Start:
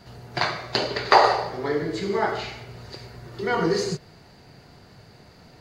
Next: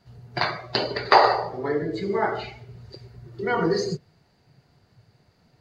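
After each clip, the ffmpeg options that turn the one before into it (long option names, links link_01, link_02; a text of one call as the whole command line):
ffmpeg -i in.wav -af "afftdn=noise_reduction=13:noise_floor=-33" out.wav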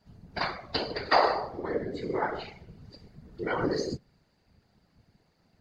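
ffmpeg -i in.wav -af "afftfilt=real='hypot(re,im)*cos(2*PI*random(0))':imag='hypot(re,im)*sin(2*PI*random(1))':win_size=512:overlap=0.75" out.wav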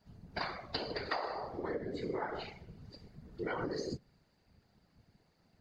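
ffmpeg -i in.wav -af "acompressor=threshold=-30dB:ratio=16,volume=-3dB" out.wav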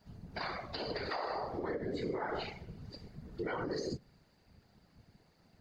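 ffmpeg -i in.wav -af "alimiter=level_in=8dB:limit=-24dB:level=0:latency=1:release=87,volume=-8dB,volume=4dB" out.wav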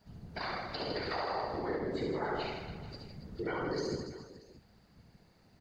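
ffmpeg -i in.wav -af "aecho=1:1:70|161|279.3|433.1|633:0.631|0.398|0.251|0.158|0.1" out.wav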